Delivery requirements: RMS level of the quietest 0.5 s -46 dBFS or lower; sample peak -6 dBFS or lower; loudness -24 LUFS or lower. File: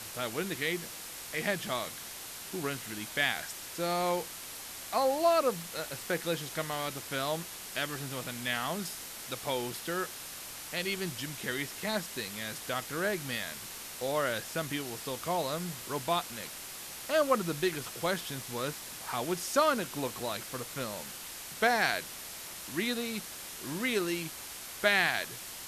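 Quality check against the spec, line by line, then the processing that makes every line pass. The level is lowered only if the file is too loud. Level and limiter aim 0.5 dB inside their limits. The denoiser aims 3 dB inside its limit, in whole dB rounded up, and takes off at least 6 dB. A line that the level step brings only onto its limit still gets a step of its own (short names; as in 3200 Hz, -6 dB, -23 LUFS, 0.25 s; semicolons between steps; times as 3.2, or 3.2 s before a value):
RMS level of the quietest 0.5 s -44 dBFS: fail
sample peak -10.5 dBFS: OK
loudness -33.0 LUFS: OK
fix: denoiser 6 dB, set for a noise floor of -44 dBFS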